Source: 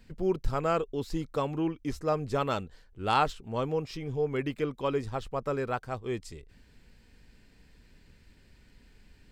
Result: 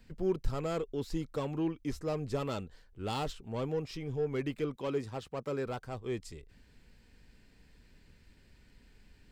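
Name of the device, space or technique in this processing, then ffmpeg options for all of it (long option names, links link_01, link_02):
one-band saturation: -filter_complex "[0:a]asettb=1/sr,asplit=3[link_01][link_02][link_03];[link_01]atrim=end=4.764[link_04];[link_02]atrim=start=4.76:end=5.66,asetpts=PTS-STARTPTS,afade=type=in:duration=0.004:curve=qsin,afade=type=out:start_time=0.896:duration=0.004:curve=qsin,highpass=110[link_05];[link_03]atrim=start=5.656[link_06];[link_04][link_05]acrossfade=duration=0.004:curve1=hsin:curve2=qsin[link_07];[link_07][link_06]acrossfade=duration=0.004:curve1=qsin:curve2=hsin,acrossover=split=530|3400[link_08][link_09][link_10];[link_09]asoftclip=type=tanh:threshold=-36.5dB[link_11];[link_08][link_11][link_10]amix=inputs=3:normalize=0,volume=-2.5dB"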